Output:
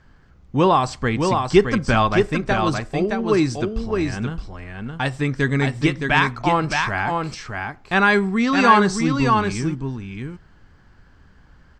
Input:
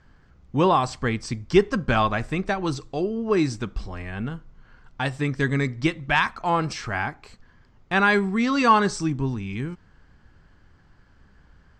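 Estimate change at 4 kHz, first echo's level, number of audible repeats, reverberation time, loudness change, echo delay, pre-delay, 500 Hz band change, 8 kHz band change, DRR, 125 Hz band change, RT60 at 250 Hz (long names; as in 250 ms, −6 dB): +4.5 dB, −4.5 dB, 1, no reverb audible, +4.0 dB, 617 ms, no reverb audible, +4.5 dB, +4.5 dB, no reverb audible, +4.5 dB, no reverb audible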